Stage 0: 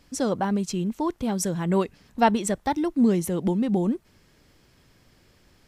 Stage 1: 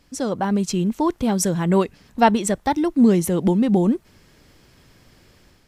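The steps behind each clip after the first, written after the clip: AGC gain up to 6 dB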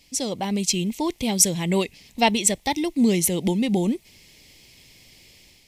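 EQ curve 870 Hz 0 dB, 1500 Hz -12 dB, 2100 Hz +12 dB; gain -4.5 dB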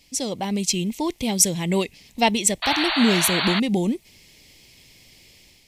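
painted sound noise, 2.62–3.6, 600–4600 Hz -24 dBFS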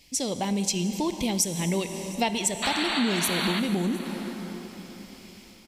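plate-style reverb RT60 4.3 s, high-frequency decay 0.65×, DRR 9 dB; compressor 3:1, threshold -24 dBFS, peak gain reduction 10 dB; echo 0.711 s -22.5 dB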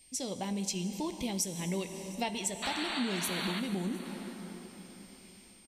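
doubler 16 ms -12 dB; whine 8700 Hz -50 dBFS; gain -8.5 dB

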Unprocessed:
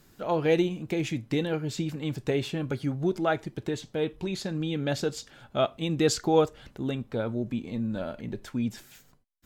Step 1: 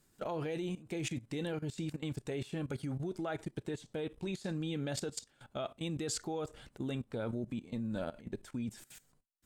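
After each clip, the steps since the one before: bell 8700 Hz +10.5 dB 0.5 oct; level quantiser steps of 17 dB; gain -2.5 dB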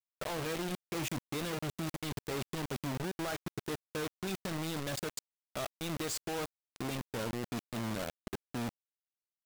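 requantised 6-bit, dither none; gain -1 dB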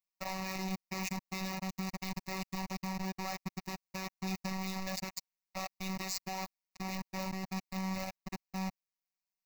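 robotiser 189 Hz; fixed phaser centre 2200 Hz, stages 8; gain +5 dB

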